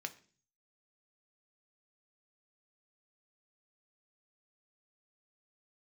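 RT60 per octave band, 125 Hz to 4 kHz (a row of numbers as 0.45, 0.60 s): 0.75, 0.60, 0.45, 0.35, 0.40, 0.50 s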